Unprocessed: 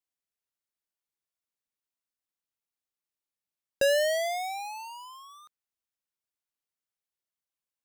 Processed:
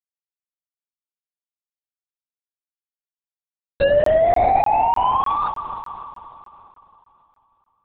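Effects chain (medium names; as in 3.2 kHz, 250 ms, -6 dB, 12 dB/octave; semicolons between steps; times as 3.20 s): peaking EQ 530 Hz -3.5 dB 2.3 oct; fuzz box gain 57 dB, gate -57 dBFS; low-pass that closes with the level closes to 820 Hz, closed at -13 dBFS; on a send at -7 dB: reverberation RT60 3.2 s, pre-delay 77 ms; on the sum: LPC vocoder at 8 kHz whisper; crackling interface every 0.30 s, samples 1024, zero, from 0.44 s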